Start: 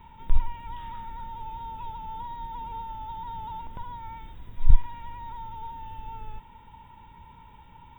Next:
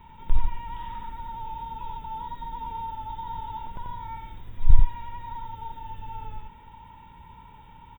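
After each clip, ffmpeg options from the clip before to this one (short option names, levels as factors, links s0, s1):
-af "aecho=1:1:89:0.708"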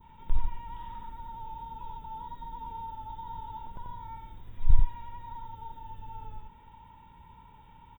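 -af "adynamicequalizer=threshold=0.00126:dfrequency=2300:dqfactor=1.2:tfrequency=2300:tqfactor=1.2:attack=5:release=100:ratio=0.375:range=3:mode=cutabove:tftype=bell,volume=0.562"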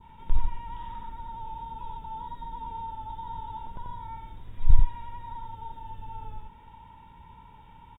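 -af "aresample=32000,aresample=44100,volume=1.41"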